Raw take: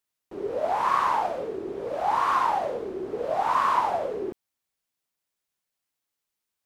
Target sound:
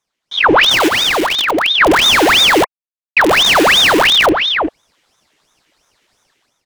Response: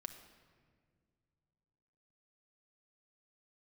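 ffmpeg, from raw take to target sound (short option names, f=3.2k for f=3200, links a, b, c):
-filter_complex "[0:a]dynaudnorm=f=200:g=5:m=16.5dB,aeval=exprs='(tanh(15.8*val(0)+0.7)-tanh(0.7))/15.8':c=same,aemphasis=mode=reproduction:type=bsi,asplit=2[a][b];[b]adelay=361.5,volume=-12dB,highshelf=f=4k:g=-8.13[c];[a][c]amix=inputs=2:normalize=0,asettb=1/sr,asplit=3[d][e][f];[d]atrim=end=2.644[g];[e]atrim=start=2.64:end=3.17,asetpts=PTS-STARTPTS,afade=t=in:d=0.004:c=qsin,afade=t=out:st=0.526:d=0.004:c=qsin,aeval=exprs='max(val(0),0)':c=same[h];[f]atrim=start=3.166[i];[g][h]acrossfade=d=0.004:c1=hsin:c2=qsin[j];[j][i]acrossfade=d=0.004:c1=qsin:c2=hsin,equalizer=f=400:t=o:w=0.67:g=-11,equalizer=f=2.5k:t=o:w=0.67:g=12,equalizer=f=6.3k:t=o:w=0.67:g=5,asplit=2[k][l];[l]acrusher=bits=3:dc=4:mix=0:aa=0.000001,volume=-5dB[m];[k][m]amix=inputs=2:normalize=0,asplit=3[n][o][p];[n]afade=t=out:st=0.87:d=0.02[q];[o]acompressor=threshold=-26dB:ratio=6,afade=t=in:st=0.87:d=0.02,afade=t=out:st=1.8:d=0.02[r];[p]afade=t=in:st=1.8:d=0.02[s];[q][r][s]amix=inputs=3:normalize=0,asuperstop=centerf=870:order=12:qfactor=1.9,alimiter=level_in=16dB:limit=-1dB:release=50:level=0:latency=1,aeval=exprs='val(0)*sin(2*PI*2000*n/s+2000*0.85/2.9*sin(2*PI*2.9*n/s))':c=same"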